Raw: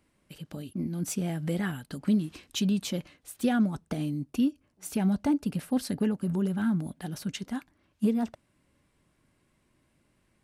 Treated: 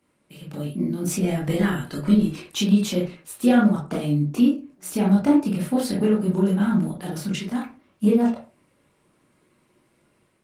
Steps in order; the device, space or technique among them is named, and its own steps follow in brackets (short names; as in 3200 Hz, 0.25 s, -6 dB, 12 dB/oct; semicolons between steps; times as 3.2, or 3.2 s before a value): far-field microphone of a smart speaker (reverb RT60 0.35 s, pre-delay 19 ms, DRR -4.5 dB; HPF 140 Hz 12 dB/oct; AGC gain up to 4 dB; Opus 24 kbps 48000 Hz)